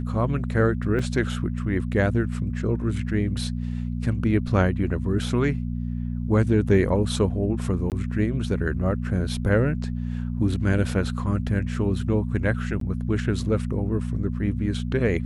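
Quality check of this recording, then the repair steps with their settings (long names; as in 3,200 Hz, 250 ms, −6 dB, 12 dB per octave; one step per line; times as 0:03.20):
mains hum 60 Hz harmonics 4 −28 dBFS
0:00.99: drop-out 4 ms
0:07.90–0:07.92: drop-out 18 ms
0:12.80–0:12.81: drop-out 13 ms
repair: hum removal 60 Hz, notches 4
repair the gap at 0:00.99, 4 ms
repair the gap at 0:07.90, 18 ms
repair the gap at 0:12.80, 13 ms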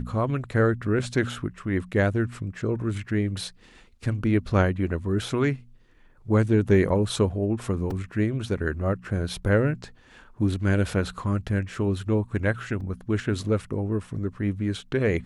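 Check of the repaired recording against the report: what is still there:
none of them is left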